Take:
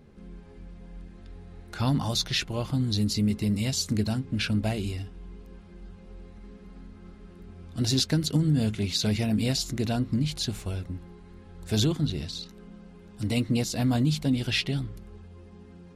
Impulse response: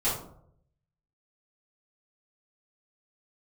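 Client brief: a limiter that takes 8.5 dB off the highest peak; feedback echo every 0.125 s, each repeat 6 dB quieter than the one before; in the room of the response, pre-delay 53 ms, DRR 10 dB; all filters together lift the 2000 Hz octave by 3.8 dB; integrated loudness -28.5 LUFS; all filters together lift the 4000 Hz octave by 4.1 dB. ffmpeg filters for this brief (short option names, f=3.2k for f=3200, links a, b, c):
-filter_complex "[0:a]equalizer=f=2k:t=o:g=3.5,equalizer=f=4k:t=o:g=4,alimiter=limit=-17.5dB:level=0:latency=1,aecho=1:1:125|250|375|500|625|750:0.501|0.251|0.125|0.0626|0.0313|0.0157,asplit=2[a][b];[1:a]atrim=start_sample=2205,adelay=53[c];[b][c]afir=irnorm=-1:irlink=0,volume=-20dB[d];[a][d]amix=inputs=2:normalize=0,volume=-3dB"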